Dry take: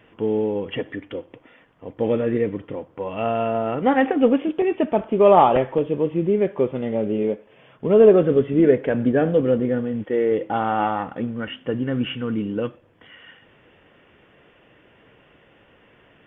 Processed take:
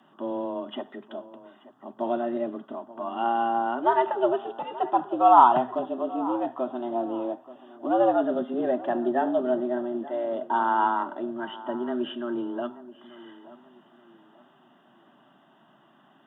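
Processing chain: fixed phaser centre 880 Hz, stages 4; darkening echo 0.881 s, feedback 34%, level -17 dB; frequency shift +120 Hz

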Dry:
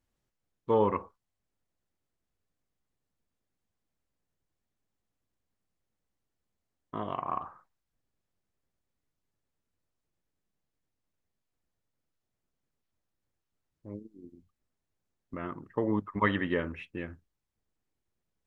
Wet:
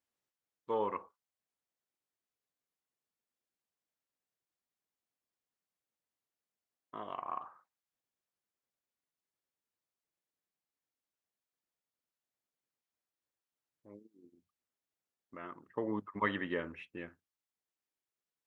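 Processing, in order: HPF 560 Hz 6 dB/oct, from 15.68 s 240 Hz, from 17.09 s 810 Hz; gain -5 dB

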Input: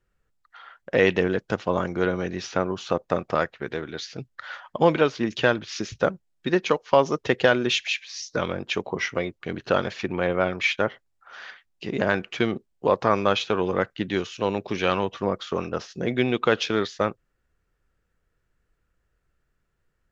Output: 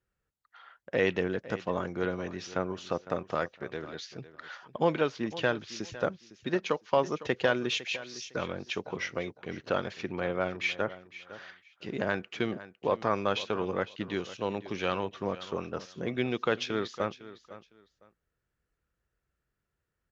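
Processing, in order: HPF 43 Hz; feedback echo 0.506 s, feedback 21%, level -16 dB; gain -7.5 dB

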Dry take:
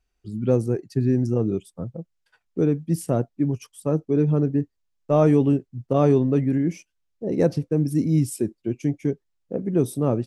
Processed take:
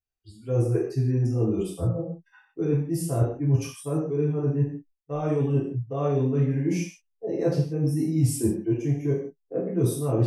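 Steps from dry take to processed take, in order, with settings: reverse; compressor 16:1, threshold -27 dBFS, peak gain reduction 15.5 dB; reverse; spectral noise reduction 23 dB; non-linear reverb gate 0.2 s falling, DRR -7 dB

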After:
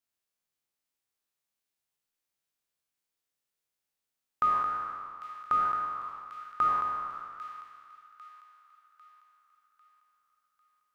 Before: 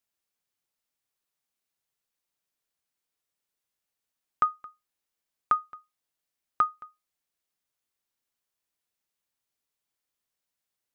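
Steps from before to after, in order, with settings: spectral trails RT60 2.01 s; flange 1.2 Hz, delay 6.3 ms, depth 8.6 ms, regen +87%; on a send: thin delay 0.798 s, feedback 45%, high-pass 2100 Hz, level -8 dB; on the sum: gain -1 dB

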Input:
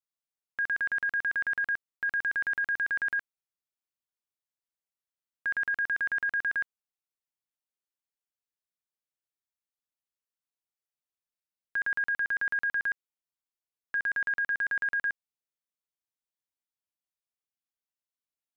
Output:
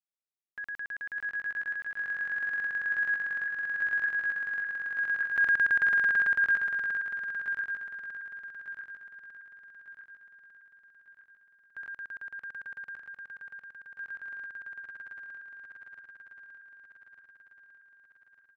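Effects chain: regenerating reverse delay 0.59 s, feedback 73%, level -3 dB; Doppler pass-by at 5.42, 6 m/s, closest 6.2 m; feedback echo 0.729 s, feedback 32%, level -22.5 dB; gain +4.5 dB

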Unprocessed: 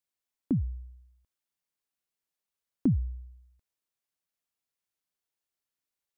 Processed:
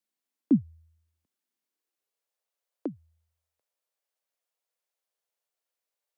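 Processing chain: frequency shift +19 Hz; high-pass sweep 230 Hz -> 530 Hz, 1.49–2.27

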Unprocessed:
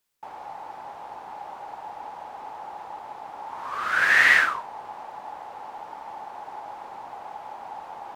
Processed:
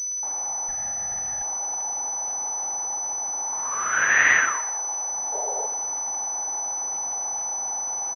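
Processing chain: 0.68–1.43 minimum comb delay 1.5 ms; 4.52–5.11 HPF 300 Hz 24 dB/oct; 5.32–5.67 painted sound noise 390–960 Hz -32 dBFS; crackle 150/s -37 dBFS; on a send: feedback echo 0.121 s, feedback 39%, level -15.5 dB; on the sum: pulse-width modulation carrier 6000 Hz

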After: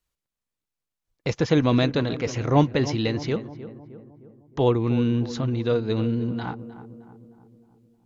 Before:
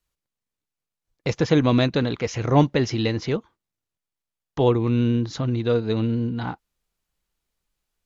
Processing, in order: darkening echo 0.309 s, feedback 56%, low-pass 1300 Hz, level -13 dB; gain -1.5 dB

